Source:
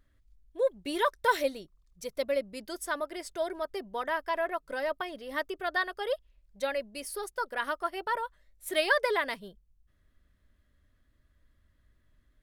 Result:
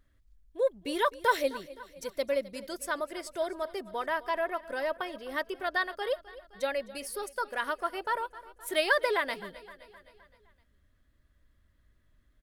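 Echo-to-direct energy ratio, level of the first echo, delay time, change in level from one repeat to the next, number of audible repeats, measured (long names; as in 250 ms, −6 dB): −16.5 dB, −18.0 dB, 259 ms, −5.0 dB, 4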